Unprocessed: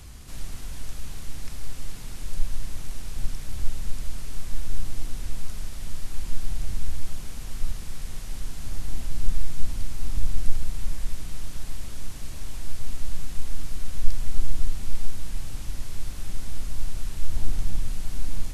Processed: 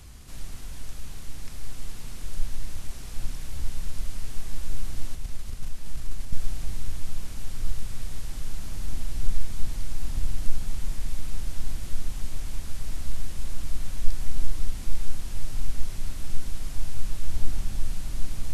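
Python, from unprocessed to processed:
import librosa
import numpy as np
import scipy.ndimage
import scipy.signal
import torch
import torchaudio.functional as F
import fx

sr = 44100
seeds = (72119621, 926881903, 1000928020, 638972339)

y = fx.level_steps(x, sr, step_db=24, at=(5.15, 6.33))
y = fx.echo_diffused(y, sr, ms=1497, feedback_pct=68, wet_db=-5.0)
y = y * librosa.db_to_amplitude(-2.5)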